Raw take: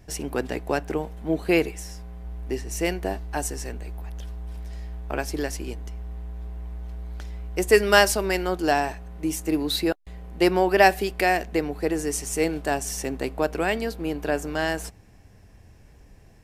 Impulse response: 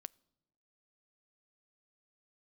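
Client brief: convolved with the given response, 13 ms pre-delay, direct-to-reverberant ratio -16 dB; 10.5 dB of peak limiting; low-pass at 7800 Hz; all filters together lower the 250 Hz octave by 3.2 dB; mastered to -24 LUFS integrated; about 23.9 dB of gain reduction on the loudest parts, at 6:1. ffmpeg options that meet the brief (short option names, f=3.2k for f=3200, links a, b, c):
-filter_complex "[0:a]lowpass=7.8k,equalizer=f=250:t=o:g=-5,acompressor=threshold=-39dB:ratio=6,alimiter=level_in=7.5dB:limit=-24dB:level=0:latency=1,volume=-7.5dB,asplit=2[a][b];[1:a]atrim=start_sample=2205,adelay=13[c];[b][c]afir=irnorm=-1:irlink=0,volume=21.5dB[d];[a][d]amix=inputs=2:normalize=0,volume=3.5dB"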